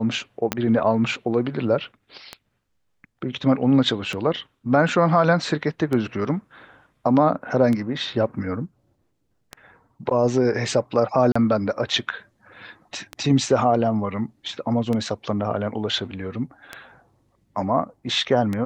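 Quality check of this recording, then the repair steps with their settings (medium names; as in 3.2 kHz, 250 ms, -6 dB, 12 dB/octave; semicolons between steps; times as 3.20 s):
tick 33 1/3 rpm -14 dBFS
0.52 s: pop -7 dBFS
11.32–11.36 s: dropout 35 ms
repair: de-click; interpolate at 11.32 s, 35 ms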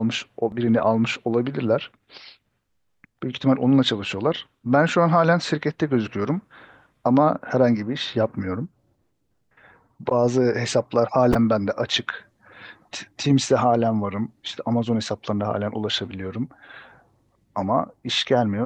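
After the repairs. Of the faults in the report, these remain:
0.52 s: pop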